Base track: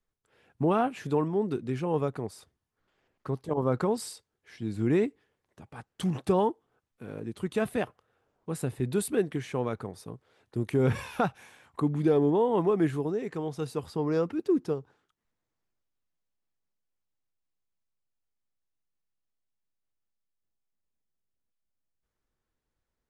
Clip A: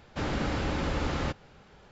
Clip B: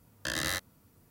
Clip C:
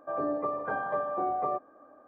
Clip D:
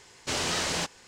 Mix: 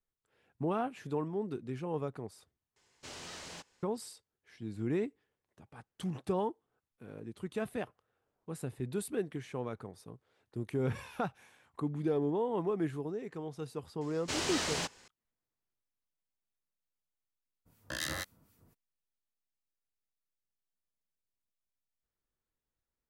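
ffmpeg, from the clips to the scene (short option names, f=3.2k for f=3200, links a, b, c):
-filter_complex "[4:a]asplit=2[a][b];[0:a]volume=-8dB[c];[2:a]acrossover=split=1500[d][e];[d]aeval=exprs='val(0)*(1-0.7/2+0.7/2*cos(2*PI*4*n/s))':c=same[f];[e]aeval=exprs='val(0)*(1-0.7/2-0.7/2*cos(2*PI*4*n/s))':c=same[g];[f][g]amix=inputs=2:normalize=0[h];[c]asplit=2[i][j];[i]atrim=end=2.764[k];[a]atrim=end=1.07,asetpts=PTS-STARTPTS,volume=-17.5dB[l];[j]atrim=start=3.826[m];[b]atrim=end=1.07,asetpts=PTS-STARTPTS,volume=-5.5dB,afade=t=in:d=0.004:c=hsin,afade=t=out:st=1.066:d=0.004:c=hsin,adelay=14010[n];[h]atrim=end=1.1,asetpts=PTS-STARTPTS,volume=-1.5dB,afade=t=in:d=0.02,afade=t=out:st=1.08:d=0.02,adelay=17650[o];[k][l]acrossfade=d=0.004:c1=hsin:c2=hsin[p];[p][m]acrossfade=d=0.004:c1=hsin:c2=hsin[q];[q][n][o]amix=inputs=3:normalize=0"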